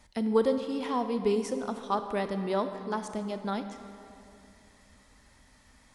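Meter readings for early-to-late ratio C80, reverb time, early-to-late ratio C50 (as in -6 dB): 9.5 dB, 2.7 s, 9.0 dB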